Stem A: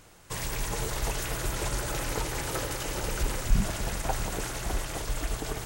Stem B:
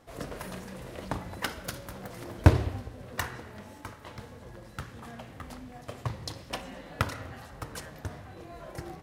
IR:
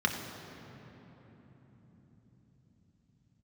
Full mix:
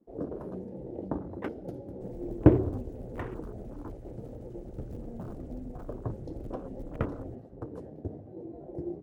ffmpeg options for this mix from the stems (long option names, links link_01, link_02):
-filter_complex "[0:a]bandreject=frequency=222.9:width_type=h:width=4,bandreject=frequency=445.8:width_type=h:width=4,bandreject=frequency=668.7:width_type=h:width=4,bandreject=frequency=891.6:width_type=h:width=4,aeval=exprs='(mod(13.3*val(0)+1,2)-1)/13.3':channel_layout=same,adelay=1700,volume=-16.5dB[link_01];[1:a]equalizer=frequency=360:width=1:gain=13,flanger=delay=5.2:depth=9.9:regen=-49:speed=1.2:shape=triangular,adynamicequalizer=threshold=0.00501:dfrequency=1800:dqfactor=0.7:tfrequency=1800:tqfactor=0.7:attack=5:release=100:ratio=0.375:range=2:mode=boostabove:tftype=highshelf,volume=-6dB[link_02];[link_01][link_02]amix=inputs=2:normalize=0,afwtdn=0.00631,tiltshelf=frequency=1100:gain=7"